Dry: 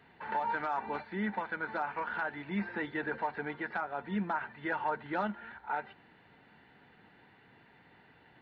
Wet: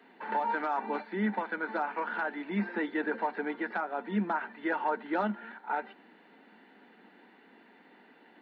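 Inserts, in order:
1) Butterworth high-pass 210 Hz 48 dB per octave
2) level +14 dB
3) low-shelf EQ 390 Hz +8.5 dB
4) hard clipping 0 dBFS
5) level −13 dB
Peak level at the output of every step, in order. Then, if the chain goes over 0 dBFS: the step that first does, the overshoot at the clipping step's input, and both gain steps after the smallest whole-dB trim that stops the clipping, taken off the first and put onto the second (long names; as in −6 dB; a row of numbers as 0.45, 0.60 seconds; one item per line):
−20.5, −6.5, −5.0, −5.0, −18.0 dBFS
no step passes full scale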